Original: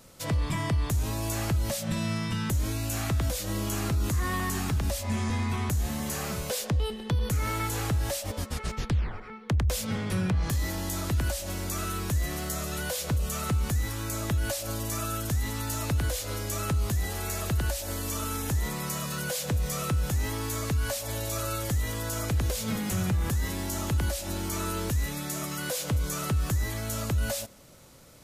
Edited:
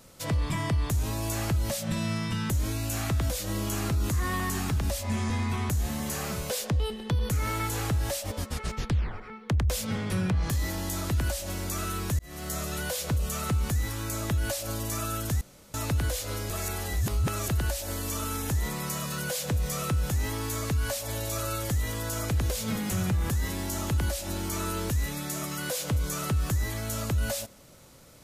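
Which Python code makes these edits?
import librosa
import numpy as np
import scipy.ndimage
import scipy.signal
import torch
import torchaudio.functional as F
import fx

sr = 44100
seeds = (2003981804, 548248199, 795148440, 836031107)

y = fx.edit(x, sr, fx.fade_in_span(start_s=12.19, length_s=0.36),
    fx.room_tone_fill(start_s=15.41, length_s=0.33),
    fx.reverse_span(start_s=16.5, length_s=0.98), tone=tone)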